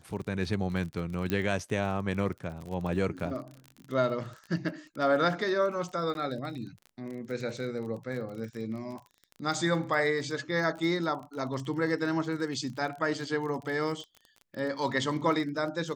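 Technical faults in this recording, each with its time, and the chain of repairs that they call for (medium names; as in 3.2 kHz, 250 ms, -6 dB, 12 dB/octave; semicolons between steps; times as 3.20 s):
crackle 34 per s -37 dBFS
1.30 s: pop -16 dBFS
6.14–6.15 s: dropout 11 ms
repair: de-click; interpolate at 6.14 s, 11 ms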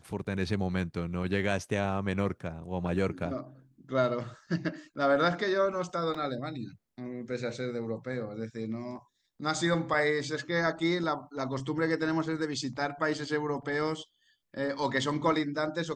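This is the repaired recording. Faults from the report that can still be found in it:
nothing left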